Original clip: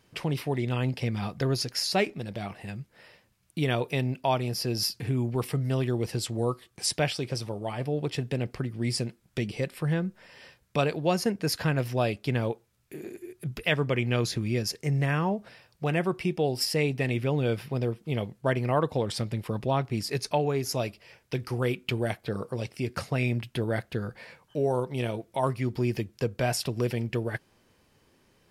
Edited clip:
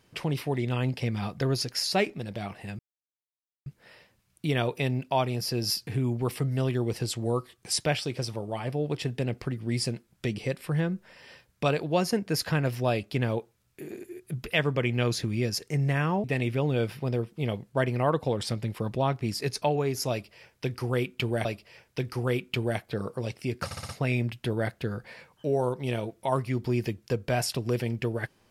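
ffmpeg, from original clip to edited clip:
-filter_complex "[0:a]asplit=8[a][b][c][d][e][f][g][h];[a]atrim=end=2.79,asetpts=PTS-STARTPTS,afade=t=out:st=2.786:d=0.004:c=hsin,apad=pad_dur=0.87[i];[b]atrim=start=2.79:end=15.372,asetpts=PTS-STARTPTS,afade=t=in:d=0.004:c=hsin[j];[c]atrim=start=16.928:end=22.142[k];[d]atrim=start=20.798:end=23.062[l];[e]atrim=start=22.998:end=23.062[m];[f]atrim=start=22.998:end=23.062[n];[g]atrim=start=22.998:end=23.062[o];[h]atrim=start=22.998[p];[i][j]concat=n=2:v=0:a=1[q];[q][k]acrossfade=d=0.004:c1=hsin:c2=hsin[r];[r][l]acrossfade=d=0.004:c1=hsin:c2=hsin[s];[s][m]acrossfade=d=0.004:c1=hsin:c2=hsin[t];[t][n]acrossfade=d=0.004:c1=hsin:c2=hsin[u];[u][o]acrossfade=d=0.004:c1=hsin:c2=hsin[v];[v][p]acrossfade=d=0.004:c1=hsin:c2=hsin"

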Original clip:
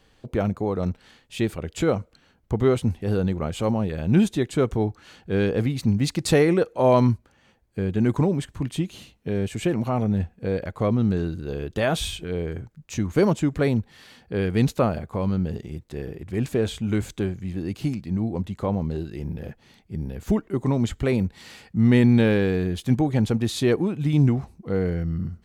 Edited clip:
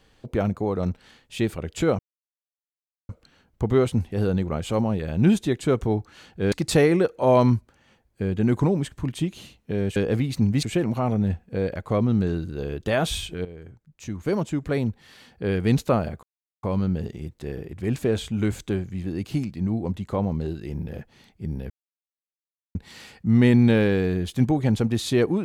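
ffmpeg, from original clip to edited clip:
-filter_complex "[0:a]asplit=9[a][b][c][d][e][f][g][h][i];[a]atrim=end=1.99,asetpts=PTS-STARTPTS,afade=t=out:st=1.986:d=0.004:c=hsin,apad=pad_dur=1.1[j];[b]atrim=start=1.99:end=5.422,asetpts=PTS-STARTPTS,afade=t=in:d=0.004:c=hsin[k];[c]atrim=start=6.088:end=9.532[l];[d]atrim=start=5.418:end=6.092[m];[e]atrim=start=9.528:end=12.35,asetpts=PTS-STARTPTS,afade=t=out:st=2.818:d=0.004:c=hsin:silence=0.199526[n];[f]atrim=start=12.35:end=15.13,asetpts=PTS-STARTPTS,afade=t=in:d=2.04:silence=0.199526,afade=t=out:st=2.776:d=0.004:c=hsin,apad=pad_dur=0.4[o];[g]atrim=start=15.13:end=20.2,asetpts=PTS-STARTPTS,afade=t=in:d=0.004:c=hsin,afade=t=out:st=5.066:d=0.004:c=hsin[p];[h]atrim=start=20.2:end=21.25,asetpts=PTS-STARTPTS,volume=0[q];[i]atrim=start=21.25,asetpts=PTS-STARTPTS,afade=t=in:d=0.004:c=hsin[r];[j][k]concat=n=2:v=0:a=1[s];[s][l]acrossfade=d=0.004:c1=hsin:c2=hsin[t];[t][m]acrossfade=d=0.004:c1=hsin:c2=hsin[u];[n][o][p][q][r]concat=n=5:v=0:a=1[v];[u][v]acrossfade=d=0.004:c1=hsin:c2=hsin"

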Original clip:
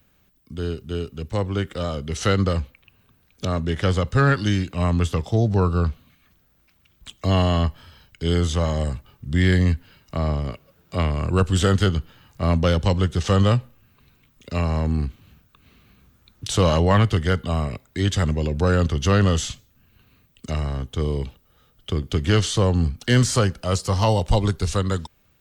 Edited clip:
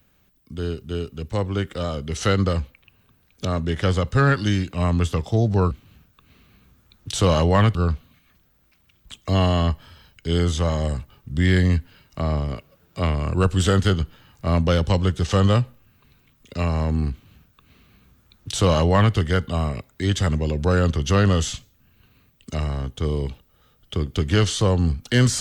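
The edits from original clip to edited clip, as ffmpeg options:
-filter_complex "[0:a]asplit=3[a][b][c];[a]atrim=end=5.712[d];[b]atrim=start=15.068:end=17.112[e];[c]atrim=start=5.708[f];[d][e]acrossfade=d=0.004:c1=hsin:c2=hsin[g];[g][f]acrossfade=d=0.004:c1=hsin:c2=hsin"

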